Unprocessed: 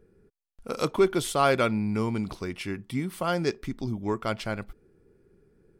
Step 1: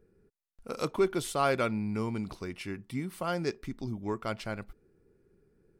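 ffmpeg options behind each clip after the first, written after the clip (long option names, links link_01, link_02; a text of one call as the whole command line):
ffmpeg -i in.wav -af "bandreject=frequency=3300:width=17,volume=-5dB" out.wav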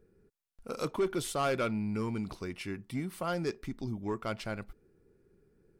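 ffmpeg -i in.wav -af "asoftclip=type=tanh:threshold=-23dB" out.wav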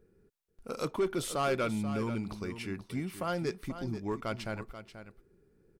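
ffmpeg -i in.wav -af "aecho=1:1:485:0.266" out.wav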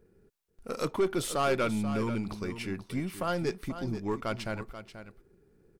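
ffmpeg -i in.wav -af "aeval=exprs='if(lt(val(0),0),0.708*val(0),val(0))':channel_layout=same,volume=4dB" out.wav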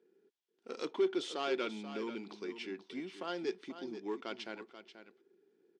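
ffmpeg -i in.wav -af "highpass=frequency=260:width=0.5412,highpass=frequency=260:width=1.3066,equalizer=frequency=370:width_type=q:width=4:gain=5,equalizer=frequency=590:width_type=q:width=4:gain=-7,equalizer=frequency=1200:width_type=q:width=4:gain=-6,equalizer=frequency=3300:width_type=q:width=4:gain=7,lowpass=frequency=6300:width=0.5412,lowpass=frequency=6300:width=1.3066,volume=-6.5dB" out.wav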